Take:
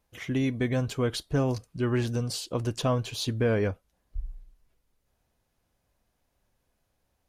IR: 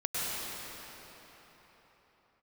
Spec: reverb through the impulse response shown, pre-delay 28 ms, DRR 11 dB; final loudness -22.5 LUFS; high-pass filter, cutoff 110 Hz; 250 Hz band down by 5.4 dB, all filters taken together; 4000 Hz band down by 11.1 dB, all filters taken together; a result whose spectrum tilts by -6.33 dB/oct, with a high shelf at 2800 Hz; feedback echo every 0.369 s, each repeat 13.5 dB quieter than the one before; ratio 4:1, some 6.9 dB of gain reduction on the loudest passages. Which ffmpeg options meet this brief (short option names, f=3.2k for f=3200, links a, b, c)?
-filter_complex "[0:a]highpass=110,equalizer=f=250:t=o:g=-6,highshelf=f=2.8k:g=-7.5,equalizer=f=4k:t=o:g=-7.5,acompressor=threshold=-32dB:ratio=4,aecho=1:1:369|738:0.211|0.0444,asplit=2[a][b];[1:a]atrim=start_sample=2205,adelay=28[c];[b][c]afir=irnorm=-1:irlink=0,volume=-19.5dB[d];[a][d]amix=inputs=2:normalize=0,volume=15dB"